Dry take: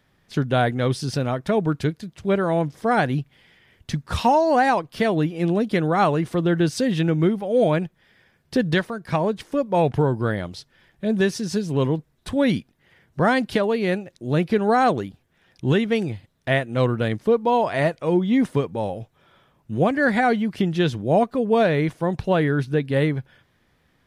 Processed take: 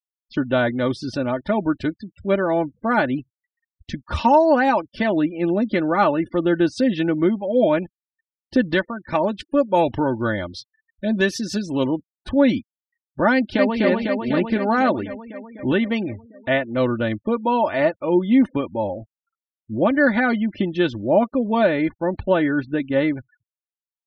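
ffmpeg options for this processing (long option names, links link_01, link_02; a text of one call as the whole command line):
ffmpeg -i in.wav -filter_complex "[0:a]asettb=1/sr,asplit=3[link_01][link_02][link_03];[link_01]atrim=end=9.154[link_04];[link_02]atrim=start=9.15:end=11.84,asetpts=PTS-STARTPTS,afade=type=in:duration=0.004:curve=qsin,afade=type=out:start_time=2.686:duration=0.004:curve=qsin,highshelf=frequency=3000:gain=8.5[link_05];[link_03]atrim=start=11.836[link_06];[link_04][link_05]acrossfade=duration=0.004:curve1=hsin:curve2=qsin[link_07];[link_07][link_06]acrossfade=duration=0.004:curve1=qsin:curve2=hsin,asplit=2[link_08][link_09];[link_09]afade=type=in:start_time=13.33:duration=0.01,afade=type=out:start_time=13.8:duration=0.01,aecho=0:1:250|500|750|1000|1250|1500|1750|2000|2250|2500|2750|3000:0.794328|0.595746|0.44681|0.335107|0.25133|0.188498|0.141373|0.10603|0.0795225|0.0596419|0.0447314|0.0335486[link_10];[link_08][link_10]amix=inputs=2:normalize=0,afftfilt=real='re*gte(hypot(re,im),0.0126)':imag='im*gte(hypot(re,im),0.0126)':win_size=1024:overlap=0.75,equalizer=frequency=9300:width=0.89:gain=-13.5,aecho=1:1:3.4:0.7" out.wav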